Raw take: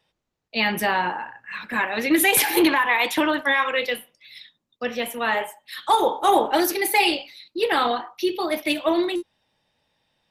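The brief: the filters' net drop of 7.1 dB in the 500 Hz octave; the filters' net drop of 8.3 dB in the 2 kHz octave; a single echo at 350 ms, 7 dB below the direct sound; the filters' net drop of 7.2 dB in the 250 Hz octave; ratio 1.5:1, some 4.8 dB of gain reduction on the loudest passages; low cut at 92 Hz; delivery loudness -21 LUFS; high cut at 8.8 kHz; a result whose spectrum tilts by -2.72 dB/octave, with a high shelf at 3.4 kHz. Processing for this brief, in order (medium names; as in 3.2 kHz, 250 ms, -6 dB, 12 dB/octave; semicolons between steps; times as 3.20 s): high-pass 92 Hz; low-pass 8.8 kHz; peaking EQ 250 Hz -7 dB; peaking EQ 500 Hz -6.5 dB; peaking EQ 2 kHz -7 dB; treble shelf 3.4 kHz -8.5 dB; compression 1.5:1, threshold -31 dBFS; delay 350 ms -7 dB; trim +10 dB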